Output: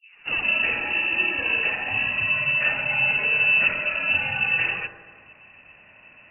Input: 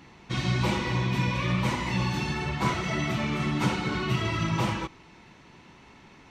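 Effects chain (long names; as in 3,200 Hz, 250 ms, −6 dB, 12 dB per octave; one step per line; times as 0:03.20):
turntable start at the beginning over 0.45 s
high-pass filter 62 Hz
parametric band 150 Hz +13 dB 0.25 octaves
delay with a high-pass on its return 72 ms, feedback 72%, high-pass 1,500 Hz, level −8.5 dB
voice inversion scrambler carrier 2,800 Hz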